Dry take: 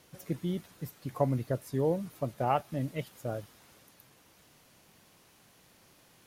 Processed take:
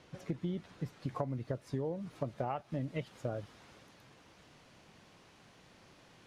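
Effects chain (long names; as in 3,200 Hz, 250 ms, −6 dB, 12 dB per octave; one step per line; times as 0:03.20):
high-shelf EQ 7,400 Hz −9 dB, from 0:01.00 −3.5 dB
downward compressor 16 to 1, threshold −35 dBFS, peak gain reduction 15 dB
high-frequency loss of the air 77 metres
level +3 dB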